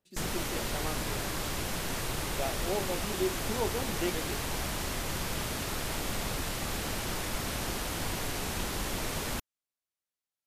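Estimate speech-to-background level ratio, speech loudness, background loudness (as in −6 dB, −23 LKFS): −3.5 dB, −37.5 LKFS, −34.0 LKFS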